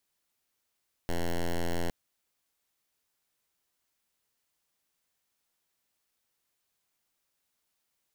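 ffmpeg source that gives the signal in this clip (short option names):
-f lavfi -i "aevalsrc='0.0376*(2*lt(mod(85.6*t,1),0.07)-1)':d=0.81:s=44100"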